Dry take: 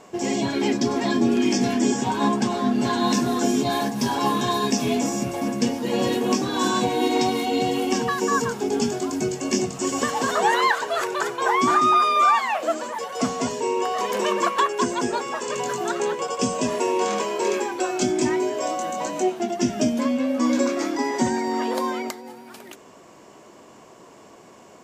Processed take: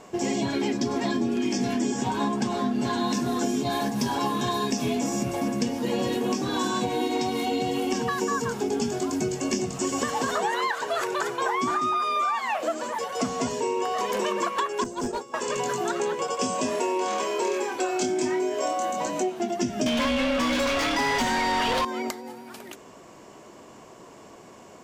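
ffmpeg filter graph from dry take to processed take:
-filter_complex "[0:a]asettb=1/sr,asplit=3[a][b][c];[a]atrim=end=14.844[d];[b]atrim=start=14.84:end=15.34,asetpts=PTS-STARTPTS,afade=t=in:d=0.004:c=qsin,afade=t=out:st=0.496:d=0.004:c=qsin,agate=range=-33dB:threshold=-22dB:ratio=3:release=100:detection=peak,equalizer=f=2.1k:w=0.98:g=-10.5,asoftclip=type=hard:threshold=-23.5dB[e];[c]atrim=start=15.336[f];[d][e]acrossfade=d=0.004:c1=hsin:c2=qsin[g];[g][f]acrossfade=d=0.004:c1=qsin:c2=hsin,asettb=1/sr,asplit=3[h][i][j];[h]atrim=end=16.374[k];[i]atrim=start=16.37:end=18.92,asetpts=PTS-STARTPTS,afade=t=in:d=0.004:c=qsin,afade=t=out:st=2.546:d=0.004:c=qsin,highpass=f=220:p=1,asplit=2[l][m];[m]adelay=27,volume=-5dB[n];[l][n]amix=inputs=2:normalize=0,atrim=end_sample=112455[o];[j]atrim=start=18.916[p];[k][o]acrossfade=d=0.004:c1=hsin:c2=qsin[q];[q][p]acrossfade=d=0.004:c1=qsin:c2=hsin,asettb=1/sr,asplit=3[r][s][t];[r]atrim=end=19.864[u];[s]atrim=start=19.86:end=21.85,asetpts=PTS-STARTPTS,afade=t=in:d=0.004:c=qsin,afade=t=out:st=1.986:d=0.004:c=qsin,equalizer=f=3.2k:w=1.3:g=11.5,asplit=2[v][w];[w]highpass=f=720:p=1,volume=27dB,asoftclip=type=tanh:threshold=-7.5dB[x];[v][x]amix=inputs=2:normalize=0,lowpass=f=2.9k:p=1,volume=-6dB,bandreject=f=350:w=5.1[y];[t]atrim=start=21.846[z];[u][y]acrossfade=d=0.004:c1=hsin:c2=qsin[aa];[aa][z]acrossfade=d=0.004:c1=qsin:c2=hsin,acompressor=threshold=-23dB:ratio=6,lowshelf=f=80:g=7"

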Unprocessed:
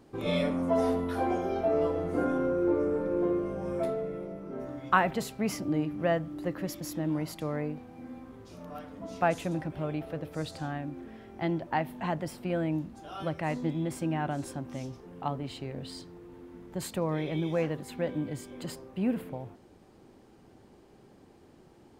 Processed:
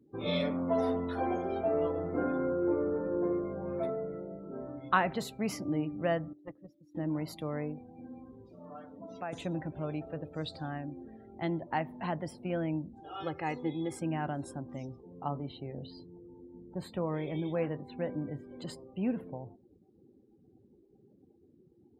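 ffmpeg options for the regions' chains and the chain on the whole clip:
-filter_complex "[0:a]asettb=1/sr,asplit=3[a][b][c];[a]atrim=end=6.334[d];[b]atrim=start=6.33:end=6.95,asetpts=PTS-STARTPTS,afade=t=in:d=0.004:c=qsin,afade=t=out:st=0.616:d=0.004:c=qsin,agate=range=-13dB:threshold=-30dB:ratio=16:release=100:detection=peak,aeval=exprs='(tanh(39.8*val(0)+0.65)-tanh(0.65))/39.8':c=same[e];[c]atrim=start=6.946[f];[d][e]acrossfade=d=0.004:c1=hsin:c2=qsin[g];[g][f]acrossfade=d=0.004:c1=qsin:c2=hsin,asettb=1/sr,asplit=3[h][i][j];[h]atrim=end=8.494[k];[i]atrim=start=8.49:end=9.33,asetpts=PTS-STARTPTS,afade=t=in:d=0.004:c=qsin,afade=t=out:st=0.836:d=0.004:c=qsin,highpass=f=160:p=1,acompressor=threshold=-38dB:ratio=2:attack=3.2:release=140:knee=1:detection=peak[l];[j]atrim=start=9.326[m];[k][l]acrossfade=d=0.004:c1=hsin:c2=qsin[n];[n][m]acrossfade=d=0.004:c1=qsin:c2=hsin,asettb=1/sr,asplit=3[o][p][q];[o]atrim=end=13.044[r];[p]atrim=start=13.04:end=14,asetpts=PTS-STARTPTS,afade=t=in:d=0.004:c=qsin,afade=t=out:st=0.956:d=0.004:c=qsin,highpass=f=110:p=1,aecho=1:1:2.4:0.68,atrim=end_sample=42336[s];[q]atrim=start=13.996[t];[r][s]acrossfade=d=0.004:c1=hsin:c2=qsin[u];[u][t]acrossfade=d=0.004:c1=qsin:c2=hsin,asettb=1/sr,asplit=3[v][w][x];[v]atrim=end=15.194[y];[w]atrim=start=15.19:end=18.51,asetpts=PTS-STARTPTS,afade=t=in:d=0.004:c=qsin,afade=t=out:st=3.316:d=0.004:c=qsin,equalizer=f=7.8k:t=o:w=1.9:g=-10.5,asplit=2[z][aa];[aa]adelay=28,volume=-13dB[ab];[z][ab]amix=inputs=2:normalize=0,atrim=end_sample=146412[ac];[x]atrim=start=18.506[ad];[y][ac]acrossfade=d=0.004:c1=hsin:c2=qsin[ae];[ae][ad]acrossfade=d=0.004:c1=qsin:c2=hsin,afftdn=nr=28:nf=-49,highpass=49,equalizer=f=3.8k:t=o:w=0.27:g=7.5,volume=-3dB"

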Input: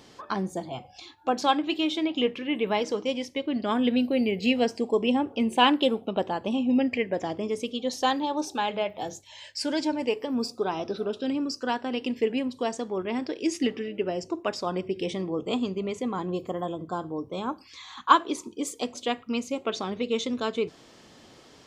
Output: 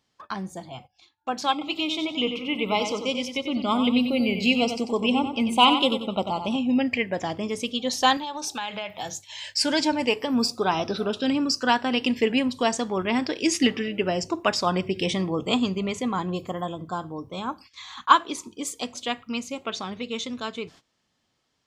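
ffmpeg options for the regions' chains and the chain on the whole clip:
-filter_complex "[0:a]asettb=1/sr,asplit=3[a][b][c];[a]atrim=end=1.524[d];[b]atrim=start=1.52:end=6.56,asetpts=PTS-STARTPTS,afade=t=in:d=0.004:c=qsin,afade=t=out:st=5.036:d=0.004:c=qsin,asuperstop=centerf=1700:order=8:qfactor=2.5,aecho=1:1:93|186|279|372:0.398|0.127|0.0408|0.013,atrim=end_sample=222264[e];[c]atrim=start=6.556[f];[d][e]acrossfade=d=0.004:c1=hsin:c2=qsin[g];[g][f]acrossfade=d=0.004:c1=qsin:c2=hsin,asettb=1/sr,asplit=3[h][i][j];[h]atrim=end=8.174[k];[i]atrim=start=8.17:end=9.47,asetpts=PTS-STARTPTS,afade=t=in:d=0.004:c=qsin,afade=t=out:st=1.296:d=0.004:c=qsin,highpass=100,equalizer=f=330:w=0.46:g=-6.5,acompressor=threshold=-32dB:ratio=10:attack=3.2:release=140:knee=1:detection=peak[l];[j]atrim=start=9.466[m];[k][l]acrossfade=d=0.004:c1=hsin:c2=qsin[n];[n][m]acrossfade=d=0.004:c1=qsin:c2=hsin,dynaudnorm=f=200:g=21:m=11dB,agate=range=-19dB:threshold=-42dB:ratio=16:detection=peak,equalizer=f=400:w=0.89:g=-8.5"

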